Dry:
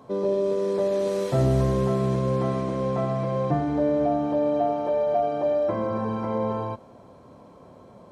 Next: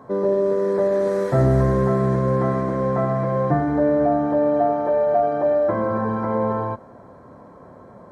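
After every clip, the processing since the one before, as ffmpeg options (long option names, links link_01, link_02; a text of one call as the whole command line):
ffmpeg -i in.wav -af "highshelf=frequency=2200:width_type=q:width=3:gain=-7,volume=4dB" out.wav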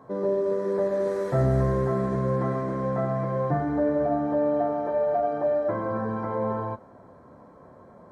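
ffmpeg -i in.wav -af "flanger=delay=6.2:depth=7.5:regen=-64:speed=0.33:shape=sinusoidal,volume=-1.5dB" out.wav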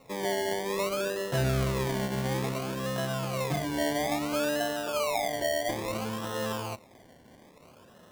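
ffmpeg -i in.wav -af "acrusher=samples=27:mix=1:aa=0.000001:lfo=1:lforange=16.2:lforate=0.59,volume=-5dB" out.wav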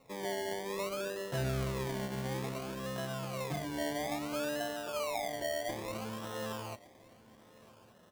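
ffmpeg -i in.wav -af "aecho=1:1:1162:0.0841,volume=-7dB" out.wav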